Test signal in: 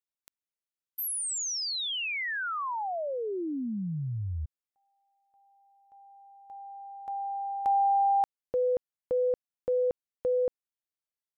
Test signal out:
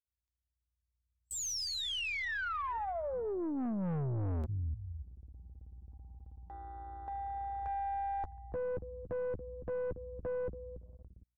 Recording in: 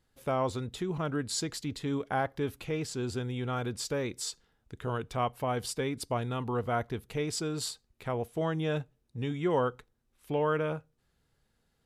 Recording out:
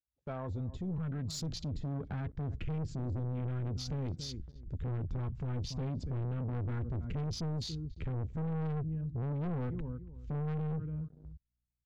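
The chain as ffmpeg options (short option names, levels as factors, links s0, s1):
-filter_complex "[0:a]aresample=16000,aresample=44100,acrossover=split=230[s0][s1];[s1]acompressor=threshold=0.0141:ratio=1.5:attack=6.9:release=574:knee=2.83:detection=peak[s2];[s0][s2]amix=inputs=2:normalize=0,lowshelf=f=110:g=2,asplit=2[s3][s4];[s4]adelay=12,volume=0.316[s5];[s3][s5]amix=inputs=2:normalize=0,aeval=exprs='val(0)+0.000447*(sin(2*PI*60*n/s)+sin(2*PI*2*60*n/s)/2+sin(2*PI*3*60*n/s)/3+sin(2*PI*4*60*n/s)/4+sin(2*PI*5*60*n/s)/5)':c=same,afwtdn=0.00562,asplit=2[s6][s7];[s7]adelay=282,lowpass=f=950:p=1,volume=0.1,asplit=2[s8][s9];[s9]adelay=282,lowpass=f=950:p=1,volume=0.19[s10];[s6][s8][s10]amix=inputs=3:normalize=0,dynaudnorm=f=110:g=21:m=1.58,asubboost=boost=10:cutoff=200,aeval=exprs='(tanh(15.8*val(0)+0.25)-tanh(0.25))/15.8':c=same,agate=range=0.0631:threshold=0.00224:ratio=16:release=21:detection=rms,alimiter=level_in=2.37:limit=0.0631:level=0:latency=1:release=32,volume=0.422"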